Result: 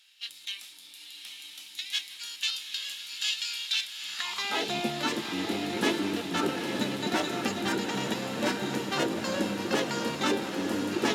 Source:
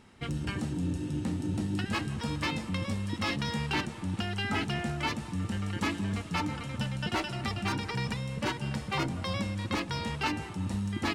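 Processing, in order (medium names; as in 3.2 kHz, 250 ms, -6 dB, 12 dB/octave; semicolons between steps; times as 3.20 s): high-pass sweep 2.4 kHz -> 250 Hz, 3.92–4.78 s; formant shift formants +5 st; echo that smears into a reverb 913 ms, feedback 60%, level -5.5 dB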